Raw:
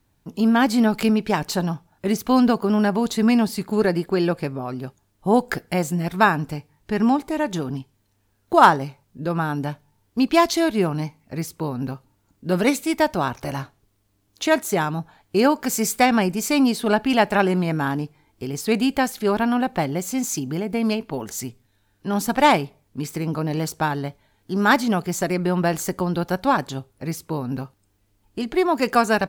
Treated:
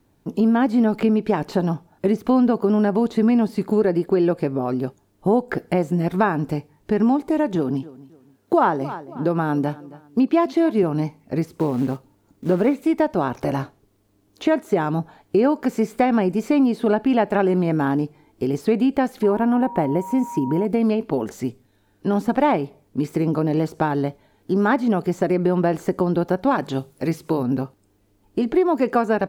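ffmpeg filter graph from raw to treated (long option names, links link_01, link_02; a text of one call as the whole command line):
ffmpeg -i in.wav -filter_complex "[0:a]asettb=1/sr,asplit=3[link_01][link_02][link_03];[link_01]atrim=end=7.554[link_04];[link_02]atrim=start=7.55:end=10.83,asetpts=PTS-STARTPTS,afade=type=in:duration=0.004:curve=qsin,afade=type=out:start_time=3.276:duration=0.004:curve=qsin,highpass=110,deesser=0.4,asplit=2[link_05][link_06];[link_06]adelay=272,lowpass=frequency=4100:poles=1,volume=-21.5dB,asplit=2[link_07][link_08];[link_08]adelay=272,lowpass=frequency=4100:poles=1,volume=0.31[link_09];[link_05][link_07][link_09]amix=inputs=3:normalize=0,atrim=end_sample=144648[link_10];[link_03]atrim=start=10.826[link_11];[link_04][link_10]acrossfade=duration=0.004:curve1=hsin:curve2=qsin[link_12];[link_12][link_11]acrossfade=duration=0.004:curve1=qsin:curve2=hsin,asettb=1/sr,asplit=3[link_13][link_14][link_15];[link_13]atrim=end=11.454[link_16];[link_14]atrim=start=11.45:end=12.82,asetpts=PTS-STARTPTS,afade=type=in:duration=0.004:curve=qsin,afade=type=out:start_time=1.366:duration=0.004:curve=qsin,acrossover=split=3200[link_17][link_18];[link_18]acompressor=threshold=-44dB:ratio=4:attack=1:release=60[link_19];[link_17][link_19]amix=inputs=2:normalize=0,acrusher=bits=4:mode=log:mix=0:aa=0.000001[link_20];[link_15]atrim=start=12.816[link_21];[link_16][link_20]acrossfade=duration=0.004:curve1=hsin:curve2=qsin[link_22];[link_22][link_21]acrossfade=duration=0.004:curve1=qsin:curve2=hsin,asettb=1/sr,asplit=3[link_23][link_24][link_25];[link_23]atrim=end=19.234[link_26];[link_24]atrim=start=19.23:end=20.65,asetpts=PTS-STARTPTS,afade=type=in:duration=0.004:curve=qsin,afade=type=out:start_time=1.416:duration=0.004:curve=qsin,equalizer=frequency=4400:width_type=o:width=1.2:gain=-12.5,aeval=exprs='val(0)+0.0224*sin(2*PI*950*n/s)':channel_layout=same[link_27];[link_25]atrim=start=20.646[link_28];[link_26][link_27]acrossfade=duration=0.004:curve1=hsin:curve2=qsin[link_29];[link_29][link_28]acrossfade=duration=0.004:curve1=qsin:curve2=hsin,asettb=1/sr,asplit=3[link_30][link_31][link_32];[link_30]atrim=end=26.514[link_33];[link_31]atrim=start=26.51:end=27.43,asetpts=PTS-STARTPTS,afade=type=in:duration=0.004:curve=qsin,afade=type=out:start_time=0.916:duration=0.004:curve=qsin,highshelf=frequency=2300:gain=10.5,bandreject=frequency=50:width_type=h:width=6,bandreject=frequency=100:width_type=h:width=6,bandreject=frequency=150:width_type=h:width=6,bandreject=frequency=200:width_type=h:width=6[link_34];[link_32]atrim=start=27.426[link_35];[link_33][link_34]acrossfade=duration=0.004:curve1=hsin:curve2=qsin[link_36];[link_36][link_35]acrossfade=duration=0.004:curve1=qsin:curve2=hsin,acrossover=split=3100[link_37][link_38];[link_38]acompressor=threshold=-43dB:ratio=4:attack=1:release=60[link_39];[link_37][link_39]amix=inputs=2:normalize=0,equalizer=frequency=370:width_type=o:width=2.4:gain=10,acompressor=threshold=-18dB:ratio=2.5" out.wav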